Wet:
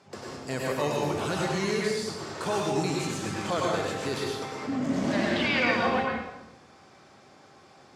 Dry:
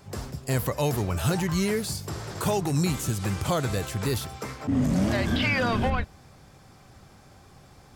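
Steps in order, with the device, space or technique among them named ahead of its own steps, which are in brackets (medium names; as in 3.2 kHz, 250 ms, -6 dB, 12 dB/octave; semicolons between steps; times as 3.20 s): supermarket ceiling speaker (band-pass 240–6300 Hz; reverberation RT60 0.95 s, pre-delay 92 ms, DRR -3 dB); trim -3 dB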